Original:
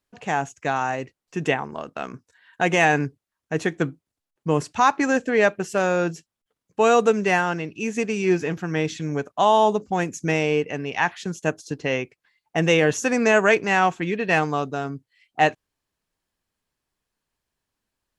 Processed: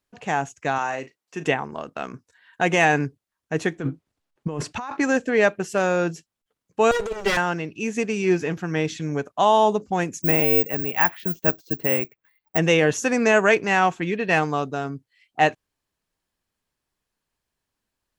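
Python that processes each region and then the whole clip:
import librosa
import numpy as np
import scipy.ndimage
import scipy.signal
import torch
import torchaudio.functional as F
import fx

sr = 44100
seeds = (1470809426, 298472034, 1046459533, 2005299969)

y = fx.chain(x, sr, fx.highpass(hz=350.0, slope=6),
    fx.doubler(ms=37.0, db=-12.0), at=(0.78, 1.45))
y = fx.chain(y, sr, fx.lowpass(hz=3800.0, slope=6),
    fx.over_compress(threshold_db=-28.0, ratio=-1.0), at=(3.79, 4.97))
y = fx.chain(y, sr, fx.lower_of_two(delay_ms=2.1),
    fx.notch(hz=890.0, q=12.0),
    fx.over_compress(threshold_db=-21.0, ratio=-0.5), at=(6.91, 7.37))
y = fx.chain(y, sr, fx.lowpass(hz=2600.0, slope=12),
    fx.resample_bad(factor=2, down='none', up='zero_stuff'), at=(10.22, 12.58))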